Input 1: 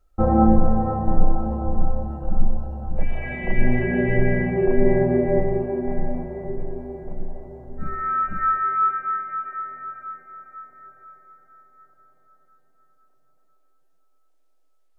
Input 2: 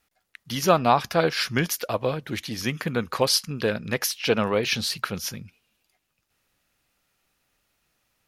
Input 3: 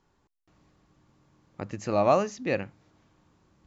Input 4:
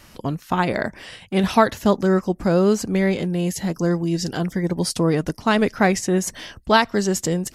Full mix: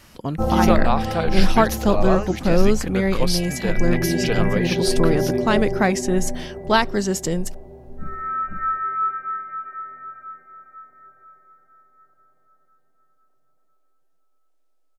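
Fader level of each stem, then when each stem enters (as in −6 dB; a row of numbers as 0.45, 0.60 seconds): −2.5, −3.0, −1.5, −1.5 decibels; 0.20, 0.00, 0.00, 0.00 seconds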